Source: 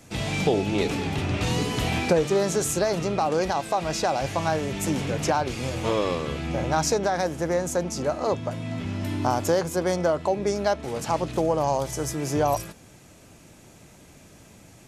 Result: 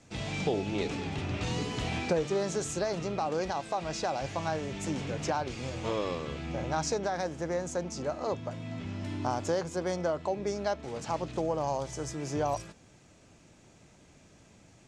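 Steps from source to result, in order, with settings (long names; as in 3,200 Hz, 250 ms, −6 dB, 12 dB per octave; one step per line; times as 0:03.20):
low-pass filter 8,000 Hz 24 dB per octave
level −7.5 dB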